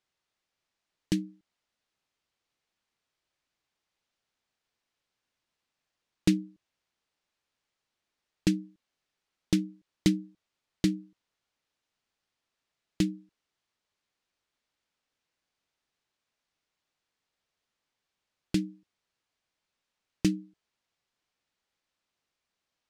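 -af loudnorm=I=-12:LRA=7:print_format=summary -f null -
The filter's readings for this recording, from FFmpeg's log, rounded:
Input Integrated:    -31.5 LUFS
Input True Peak:      -8.9 dBTP
Input LRA:             7.3 LU
Input Threshold:     -42.7 LUFS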